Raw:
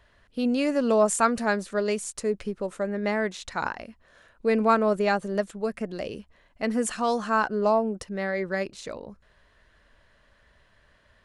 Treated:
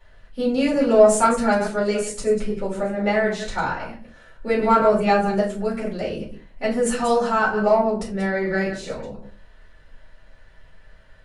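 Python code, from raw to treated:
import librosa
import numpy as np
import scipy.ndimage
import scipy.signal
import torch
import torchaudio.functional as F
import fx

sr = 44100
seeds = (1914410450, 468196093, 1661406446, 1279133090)

p1 = fx.reverse_delay(x, sr, ms=104, wet_db=-9)
p2 = 10.0 ** (-16.5 / 20.0) * np.tanh(p1 / 10.0 ** (-16.5 / 20.0))
p3 = p1 + F.gain(torch.from_numpy(p2), -5.0).numpy()
p4 = fx.room_shoebox(p3, sr, seeds[0], volume_m3=130.0, walls='furnished', distance_m=4.3)
y = F.gain(torch.from_numpy(p4), -8.5).numpy()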